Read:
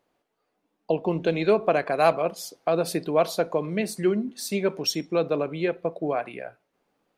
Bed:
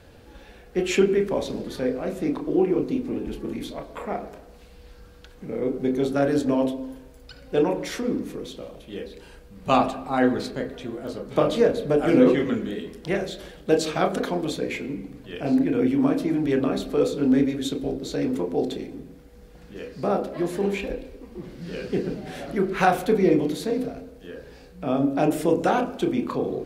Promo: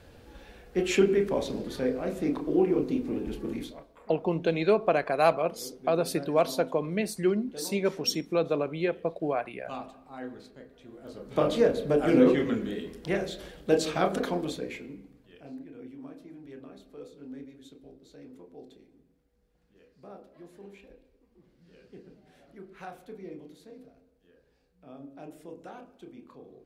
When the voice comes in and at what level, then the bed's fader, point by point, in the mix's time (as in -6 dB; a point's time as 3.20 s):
3.20 s, -2.5 dB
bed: 3.59 s -3 dB
3.94 s -19.5 dB
10.72 s -19.5 dB
11.46 s -3.5 dB
14.34 s -3.5 dB
15.67 s -23.5 dB